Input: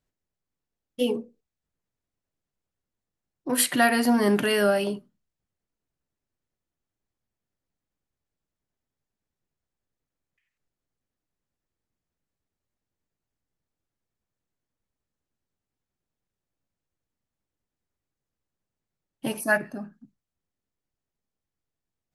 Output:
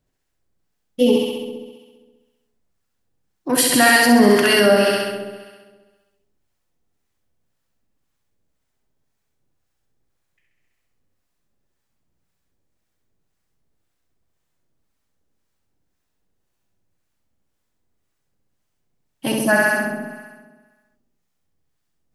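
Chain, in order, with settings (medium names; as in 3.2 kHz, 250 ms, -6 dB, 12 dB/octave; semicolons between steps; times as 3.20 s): flutter echo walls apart 11.4 m, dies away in 1.4 s; in parallel at +2 dB: peak limiter -14 dBFS, peak gain reduction 7.5 dB; on the sum: dynamic bell 5.3 kHz, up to +6 dB, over -40 dBFS, Q 1.7; harmonic tremolo 1.9 Hz, depth 50%, crossover 770 Hz; trim +2.5 dB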